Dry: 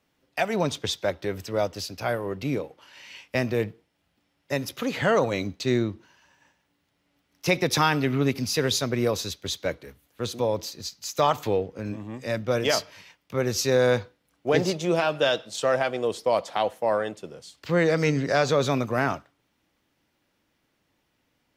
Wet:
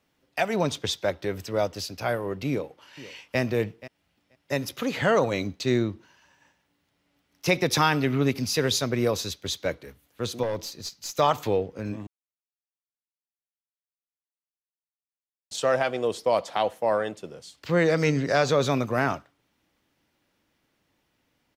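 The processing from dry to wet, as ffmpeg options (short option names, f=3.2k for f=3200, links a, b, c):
-filter_complex "[0:a]asplit=2[a][b];[b]afade=t=in:st=2.49:d=0.01,afade=t=out:st=3.39:d=0.01,aecho=0:1:480|960:0.149624|0.0149624[c];[a][c]amix=inputs=2:normalize=0,asettb=1/sr,asplit=3[d][e][f];[d]atrim=end=10.434[g];[e]atrim=start=10.43:end=11.19,asetpts=PTS-STARTPTS,afade=t=in:d=0.004:c=qsin,afade=t=out:st=0.756:d=0.004:c=qsin,aeval=exprs='(tanh(14.1*val(0)+0.3)-tanh(0.3))/14.1':c=same[h];[f]atrim=start=11.186[i];[g][h]acrossfade=d=0.004:c1=hsin:c2=qsin[j];[j][i]acrossfade=d=0.004:c1=qsin:c2=hsin,asplit=3[k][l][m];[k]atrim=end=12.07,asetpts=PTS-STARTPTS,afade=t=out:st=12.066:d=0.004:c=hsin[n];[l]atrim=start=12.07:end=15.51,asetpts=PTS-STARTPTS,volume=0[o];[m]atrim=start=15.51,asetpts=PTS-STARTPTS,afade=t=in:d=0.004:c=hsin[p];[n][o][p]concat=n=3:v=0:a=1"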